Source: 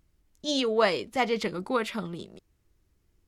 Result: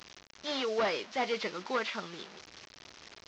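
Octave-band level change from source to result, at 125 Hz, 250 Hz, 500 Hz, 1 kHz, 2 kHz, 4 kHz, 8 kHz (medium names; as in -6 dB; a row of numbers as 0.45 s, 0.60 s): -12.0 dB, -9.5 dB, -6.0 dB, -4.5 dB, -3.5 dB, -4.0 dB, -5.5 dB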